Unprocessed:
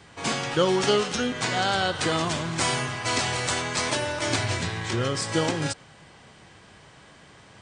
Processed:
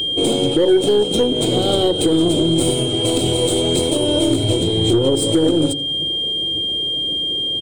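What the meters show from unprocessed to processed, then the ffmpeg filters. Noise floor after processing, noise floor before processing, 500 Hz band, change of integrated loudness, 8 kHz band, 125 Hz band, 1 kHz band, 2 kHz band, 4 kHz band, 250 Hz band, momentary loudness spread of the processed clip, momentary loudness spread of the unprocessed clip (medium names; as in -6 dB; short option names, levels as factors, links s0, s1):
-21 dBFS, -52 dBFS, +11.0 dB, +8.5 dB, +5.5 dB, +8.0 dB, -2.0 dB, -9.5 dB, +13.0 dB, +13.5 dB, 3 LU, 5 LU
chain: -filter_complex "[0:a]bandreject=f=47.21:t=h:w=4,bandreject=f=94.42:t=h:w=4,bandreject=f=141.63:t=h:w=4,bandreject=f=188.84:t=h:w=4,bandreject=f=236.05:t=h:w=4,bandreject=f=283.26:t=h:w=4,asplit=2[s0][s1];[s1]asoftclip=type=tanh:threshold=0.0531,volume=0.282[s2];[s0][s2]amix=inputs=2:normalize=0,lowshelf=f=710:t=q:w=3:g=13.5,aexciter=amount=9.4:drive=6.8:freq=8300,acompressor=threshold=0.355:ratio=2,superequalizer=6b=2.51:11b=0.355:13b=2.51,asplit=2[s3][s4];[s4]adelay=84,lowpass=f=1900:p=1,volume=0.158,asplit=2[s5][s6];[s6]adelay=84,lowpass=f=1900:p=1,volume=0.23[s7];[s5][s7]amix=inputs=2:normalize=0[s8];[s3][s8]amix=inputs=2:normalize=0,flanger=delay=0.1:depth=2.7:regen=73:speed=1.8:shape=triangular,aeval=exprs='1.33*(cos(1*acos(clip(val(0)/1.33,-1,1)))-cos(1*PI/2))+0.0237*(cos(6*acos(clip(val(0)/1.33,-1,1)))-cos(6*PI/2))+0.0668*(cos(8*acos(clip(val(0)/1.33,-1,1)))-cos(8*PI/2))':c=same,aeval=exprs='val(0)+0.0794*sin(2*PI*3200*n/s)':c=same,alimiter=limit=0.316:level=0:latency=1:release=265,volume=1.5"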